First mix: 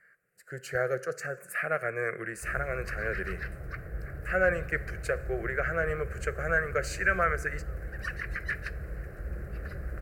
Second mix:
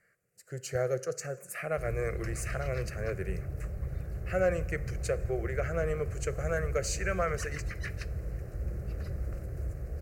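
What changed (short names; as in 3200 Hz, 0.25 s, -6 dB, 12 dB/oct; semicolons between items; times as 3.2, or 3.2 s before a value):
background: entry -0.65 s; master: add fifteen-band EQ 100 Hz +8 dB, 1600 Hz -12 dB, 6300 Hz +8 dB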